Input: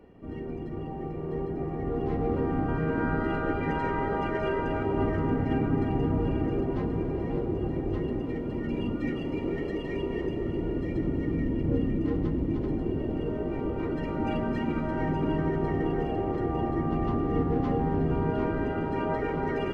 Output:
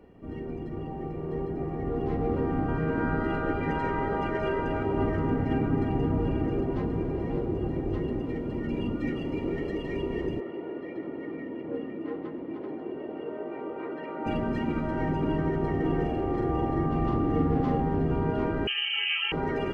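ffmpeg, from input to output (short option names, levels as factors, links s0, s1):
-filter_complex "[0:a]asettb=1/sr,asplit=3[s0][s1][s2];[s0]atrim=end=10.404[s3];[s1]atrim=start=10.4:end=14.26,asetpts=PTS-STARTPTS,afade=t=in:d=0.004:c=qsin,afade=t=out:st=3.856:d=0.004:c=qsin,highpass=410,lowpass=2600[s4];[s2]atrim=start=14.256[s5];[s3][s4]acrossfade=d=0.004:c1=hsin:c2=qsin[s6];[s6][s5]acrossfade=d=0.004:c1=qsin:c2=hsin,asettb=1/sr,asplit=3[s7][s8][s9];[s7]atrim=end=15.794[s10];[s8]atrim=start=15.79:end=17.81,asetpts=PTS-STARTPTS,afade=t=in:d=0.004:c=qsin,afade=t=out:st=2.016:d=0.004:c=qsin,asplit=2[s11][s12];[s12]adelay=44,volume=0.596[s13];[s11][s13]amix=inputs=2:normalize=0,atrim=end_sample=89082[s14];[s9]atrim=start=17.806[s15];[s10][s14]acrossfade=d=0.004:c1=hsin:c2=qsin[s16];[s16][s15]acrossfade=d=0.004:c1=qsin:c2=hsin,asettb=1/sr,asplit=3[s17][s18][s19];[s17]atrim=end=18.674[s20];[s18]atrim=start=18.67:end=19.32,asetpts=PTS-STARTPTS,afade=t=in:d=0.004:c=qsin,afade=t=out:st=0.646:d=0.004:c=qsin,lowpass=f=2700:t=q:w=0.5098,lowpass=f=2700:t=q:w=0.6013,lowpass=f=2700:t=q:w=0.9,lowpass=f=2700:t=q:w=2.563,afreqshift=-3200[s21];[s19]atrim=start=19.316[s22];[s20][s21]acrossfade=d=0.004:c1=hsin:c2=qsin[s23];[s23][s22]acrossfade=d=0.004:c1=qsin:c2=hsin"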